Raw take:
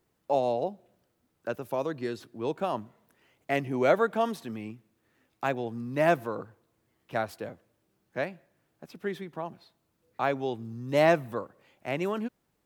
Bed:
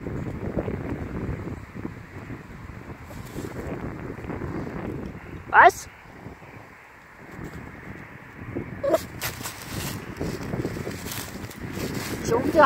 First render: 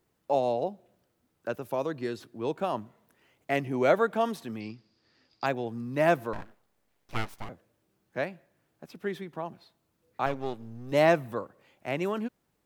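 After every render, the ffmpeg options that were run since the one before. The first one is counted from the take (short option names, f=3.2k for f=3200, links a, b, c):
-filter_complex "[0:a]asettb=1/sr,asplit=3[a][b][c];[a]atrim=end=4.604[d];[b]atrim=start=4.6:end=5.46,asetpts=PTS-STARTPTS,afade=t=in:d=0.004:c=qsin,afade=t=out:st=0.856:d=0.004:c=qsin,lowpass=f=4.8k:t=q:w=14[e];[c]atrim=start=5.456[f];[d][e]acrossfade=d=0.004:c1=hsin:c2=qsin[g];[g][f]acrossfade=d=0.004:c1=qsin:c2=hsin,asettb=1/sr,asplit=3[h][i][j];[h]atrim=end=6.334[k];[i]atrim=start=6.33:end=7.49,asetpts=PTS-STARTPTS,afade=t=in:d=0.004:c=qsin,afade=t=out:st=1.156:d=0.004:c=qsin,aeval=exprs='abs(val(0))':c=same[l];[j]atrim=start=7.486[m];[k][l]acrossfade=d=0.004:c1=hsin:c2=qsin[n];[n][m]acrossfade=d=0.004:c1=qsin:c2=hsin,asettb=1/sr,asplit=3[o][p][q];[o]atrim=end=10.264[r];[p]atrim=start=10.26:end=10.92,asetpts=PTS-STARTPTS,afade=t=in:d=0.004:c=qsin,afade=t=out:st=0.656:d=0.004:c=qsin,aeval=exprs='if(lt(val(0),0),0.251*val(0),val(0))':c=same[s];[q]atrim=start=10.916[t];[r][s]acrossfade=d=0.004:c1=hsin:c2=qsin[u];[u][t]acrossfade=d=0.004:c1=qsin:c2=hsin"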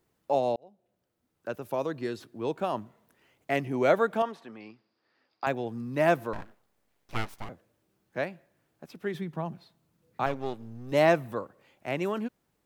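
-filter_complex "[0:a]asettb=1/sr,asplit=3[a][b][c];[a]atrim=end=4.224[d];[b]atrim=start=4.22:end=5.47,asetpts=PTS-STARTPTS,afade=t=in:d=0.004:c=qsin,afade=t=out:st=1.246:d=0.004:c=qsin,bandpass=f=1k:t=q:w=0.66[e];[c]atrim=start=5.466[f];[d][e]acrossfade=d=0.004:c1=hsin:c2=qsin[g];[g][f]acrossfade=d=0.004:c1=qsin:c2=hsin,asettb=1/sr,asplit=3[h][i][j];[h]atrim=end=9.144[k];[i]atrim=start=9.14:end=10.24,asetpts=PTS-STARTPTS,afade=t=in:d=0.004:c=qsin,afade=t=out:st=1.096:d=0.004:c=qsin,equalizer=f=160:t=o:w=0.77:g=10[l];[j]atrim=start=10.236[m];[k][l]acrossfade=d=0.004:c1=hsin:c2=qsin[n];[n][m]acrossfade=d=0.004:c1=qsin:c2=hsin,asplit=2[o][p];[o]atrim=end=0.56,asetpts=PTS-STARTPTS,afade=t=out:st=0.556:d=0.004:c=hsin[q];[p]atrim=start=0.56,asetpts=PTS-STARTPTS,afade=t=in:d=1.19[r];[q][r]concat=n=2:v=0:a=1"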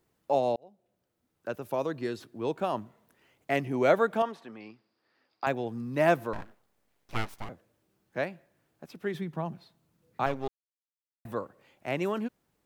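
-filter_complex "[0:a]asplit=3[a][b][c];[a]atrim=end=10.48,asetpts=PTS-STARTPTS,afade=t=out:st=10.476:d=0.004:c=hsin[d];[b]atrim=start=10.48:end=11.25,asetpts=PTS-STARTPTS,volume=0[e];[c]atrim=start=11.25,asetpts=PTS-STARTPTS,afade=t=in:d=0.004:c=hsin[f];[d][e][f]concat=n=3:v=0:a=1"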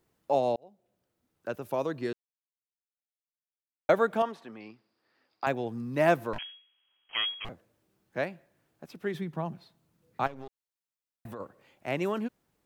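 -filter_complex "[0:a]asettb=1/sr,asplit=3[a][b][c];[a]atrim=end=6.384[d];[b]atrim=start=6.38:end=7.45,asetpts=PTS-STARTPTS,afade=t=in:d=0.004:c=qsin,afade=t=out:st=1.066:d=0.004:c=qsin,lowpass=f=2.8k:t=q:w=0.5098,lowpass=f=2.8k:t=q:w=0.6013,lowpass=f=2.8k:t=q:w=0.9,lowpass=f=2.8k:t=q:w=2.563,afreqshift=-3300[e];[c]atrim=start=7.446[f];[d][e]acrossfade=d=0.004:c1=hsin:c2=qsin[g];[g][f]acrossfade=d=0.004:c1=qsin:c2=hsin,asplit=3[h][i][j];[h]afade=t=out:st=10.26:d=0.02[k];[i]acompressor=threshold=-37dB:ratio=8:attack=3.2:release=140:knee=1:detection=peak,afade=t=in:st=10.26:d=0.02,afade=t=out:st=11.39:d=0.02[l];[j]afade=t=in:st=11.39:d=0.02[m];[k][l][m]amix=inputs=3:normalize=0,asplit=3[n][o][p];[n]atrim=end=2.13,asetpts=PTS-STARTPTS,afade=t=out:st=2.126:d=0.004:c=hsin[q];[o]atrim=start=2.13:end=3.89,asetpts=PTS-STARTPTS,volume=0[r];[p]atrim=start=3.89,asetpts=PTS-STARTPTS,afade=t=in:d=0.004:c=hsin[s];[q][r][s]concat=n=3:v=0:a=1"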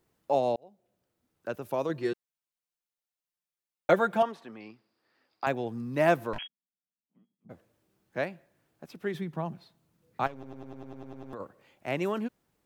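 -filter_complex "[0:a]asettb=1/sr,asplit=3[a][b][c];[a]atrim=end=1.894[d];[b]atrim=start=1.89:end=4.23,asetpts=PTS-STARTPTS,afade=t=in:d=0.004:c=qsin,afade=t=out:st=2.336:d=0.004:c=qsin,aecho=1:1:5.7:0.66,atrim=end_sample=103194[e];[c]atrim=start=4.226[f];[d][e]acrossfade=d=0.004:c1=hsin:c2=qsin[g];[g][f]acrossfade=d=0.004:c1=qsin:c2=hsin,asplit=3[h][i][j];[h]afade=t=out:st=6.46:d=0.02[k];[i]asuperpass=centerf=200:order=4:qfactor=2.6,afade=t=in:st=6.46:d=0.02,afade=t=out:st=7.49:d=0.02[l];[j]afade=t=in:st=7.49:d=0.02[m];[k][l][m]amix=inputs=3:normalize=0,asplit=11[n][o][p][q][r][s][t][u][v][w][x];[n]atrim=end=10.432[y];[o]atrim=start=10.328:end=10.432[z];[p]atrim=start=10.328:end=10.432[aa];[q]atrim=start=10.328:end=10.432[ab];[r]atrim=start=10.328:end=10.432[ac];[s]atrim=start=10.328:end=10.432[ad];[t]atrim=start=10.328:end=10.432[ae];[u]atrim=start=10.328:end=10.432[af];[v]atrim=start=10.328:end=10.432[ag];[w]atrim=start=10.328:end=10.432[ah];[x]atrim=start=11.328[ai];[y][z]acrossfade=d=0.004:c1=hsin:c2=hsin[aj];[aj][aa]acrossfade=d=0.004:c1=hsin:c2=hsin[ak];[ak][ab]acrossfade=d=0.004:c1=hsin:c2=hsin[al];[al][ac]acrossfade=d=0.004:c1=hsin:c2=hsin[am];[am][ad]acrossfade=d=0.004:c1=hsin:c2=hsin[an];[an][ae]acrossfade=d=0.004:c1=hsin:c2=hsin[ao];[ao][af]acrossfade=d=0.004:c1=hsin:c2=hsin[ap];[ap][ag]acrossfade=d=0.004:c1=hsin:c2=hsin[aq];[aq][ah]acrossfade=d=0.004:c1=hsin:c2=hsin[ar];[ar][ai]acrossfade=d=0.004:c1=hsin:c2=hsin"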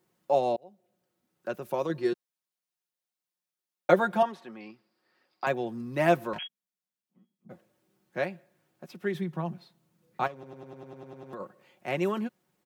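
-af "highpass=110,aecho=1:1:5.5:0.49"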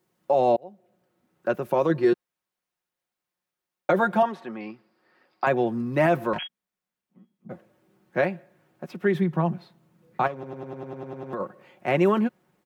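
-filter_complex "[0:a]acrossover=split=2600[a][b];[a]dynaudnorm=f=170:g=3:m=9dB[c];[c][b]amix=inputs=2:normalize=0,alimiter=limit=-11.5dB:level=0:latency=1:release=27"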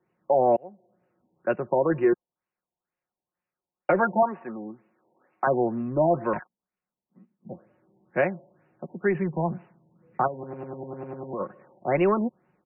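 -filter_complex "[0:a]acrossover=split=280[a][b];[a]asoftclip=type=tanh:threshold=-28dB[c];[c][b]amix=inputs=2:normalize=0,afftfilt=real='re*lt(b*sr/1024,960*pow(3000/960,0.5+0.5*sin(2*PI*2.1*pts/sr)))':imag='im*lt(b*sr/1024,960*pow(3000/960,0.5+0.5*sin(2*PI*2.1*pts/sr)))':win_size=1024:overlap=0.75"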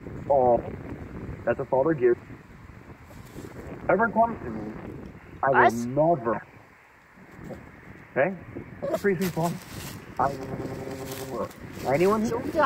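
-filter_complex "[1:a]volume=-6.5dB[a];[0:a][a]amix=inputs=2:normalize=0"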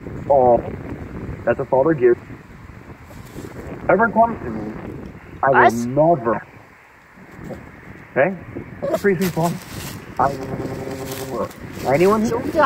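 -af "volume=7dB,alimiter=limit=-1dB:level=0:latency=1"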